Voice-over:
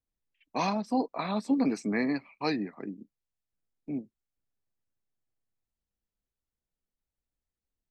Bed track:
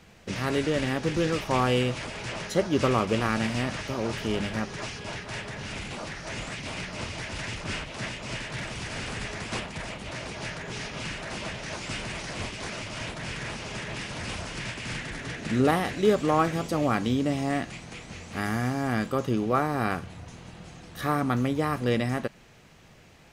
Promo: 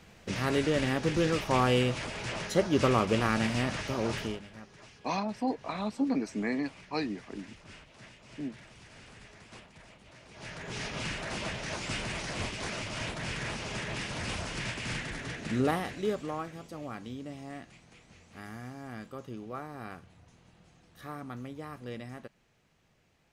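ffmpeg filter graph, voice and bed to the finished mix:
ffmpeg -i stem1.wav -i stem2.wav -filter_complex "[0:a]adelay=4500,volume=-3dB[link_01];[1:a]volume=15.5dB,afade=type=out:start_time=4.18:duration=0.22:silence=0.149624,afade=type=in:start_time=10.28:duration=0.59:silence=0.141254,afade=type=out:start_time=14.87:duration=1.59:silence=0.188365[link_02];[link_01][link_02]amix=inputs=2:normalize=0" out.wav

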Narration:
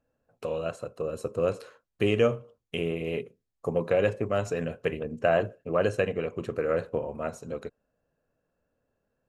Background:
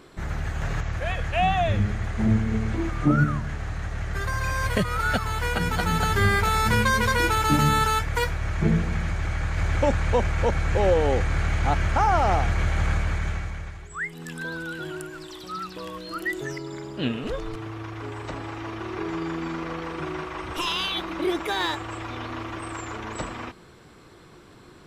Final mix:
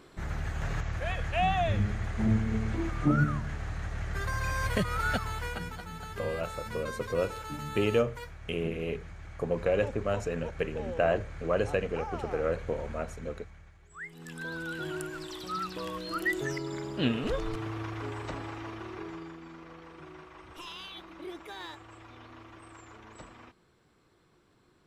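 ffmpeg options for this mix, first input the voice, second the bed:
ffmpeg -i stem1.wav -i stem2.wav -filter_complex "[0:a]adelay=5750,volume=-3dB[link_01];[1:a]volume=12.5dB,afade=type=out:start_time=5.07:duration=0.76:silence=0.211349,afade=type=in:start_time=13.79:duration=1.27:silence=0.133352,afade=type=out:start_time=17.79:duration=1.59:silence=0.16788[link_02];[link_01][link_02]amix=inputs=2:normalize=0" out.wav

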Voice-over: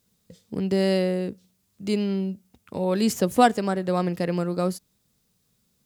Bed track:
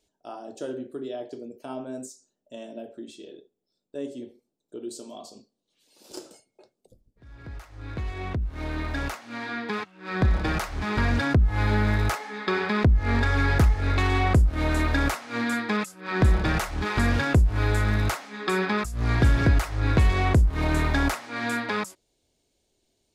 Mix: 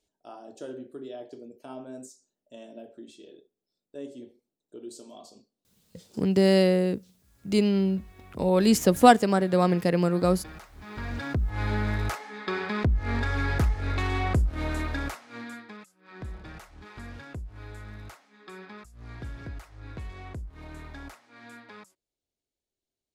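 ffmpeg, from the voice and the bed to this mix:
ffmpeg -i stem1.wav -i stem2.wav -filter_complex "[0:a]adelay=5650,volume=2dB[link_01];[1:a]volume=7.5dB,afade=type=out:start_time=5.66:duration=0.58:silence=0.237137,afade=type=in:start_time=10.76:duration=0.92:silence=0.223872,afade=type=out:start_time=14.55:duration=1.2:silence=0.188365[link_02];[link_01][link_02]amix=inputs=2:normalize=0" out.wav

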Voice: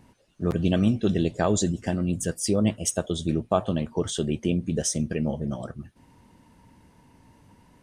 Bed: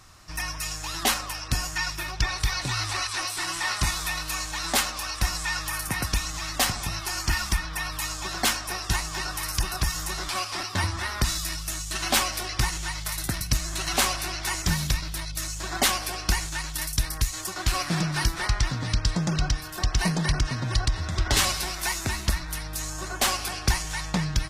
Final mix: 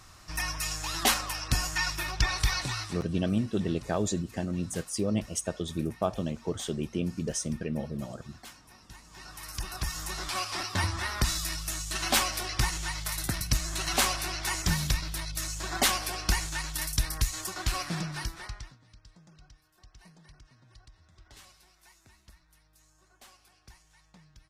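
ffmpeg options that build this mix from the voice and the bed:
ffmpeg -i stem1.wav -i stem2.wav -filter_complex "[0:a]adelay=2500,volume=-6dB[link_01];[1:a]volume=21dB,afade=type=out:start_time=2.52:duration=0.5:silence=0.0668344,afade=type=in:start_time=9.03:duration=1.47:silence=0.0794328,afade=type=out:start_time=17.33:duration=1.45:silence=0.0375837[link_02];[link_01][link_02]amix=inputs=2:normalize=0" out.wav

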